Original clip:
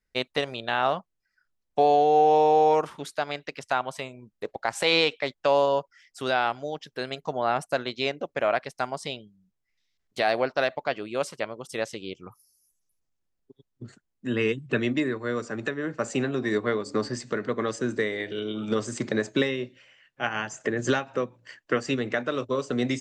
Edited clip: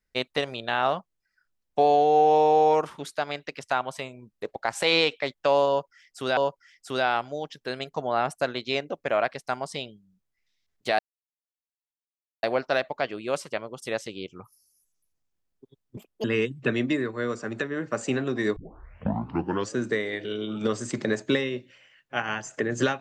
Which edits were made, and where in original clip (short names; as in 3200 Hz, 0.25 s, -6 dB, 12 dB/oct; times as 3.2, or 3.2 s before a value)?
5.68–6.37 loop, 2 plays
10.3 insert silence 1.44 s
13.84–14.31 speed 173%
16.63 tape start 1.18 s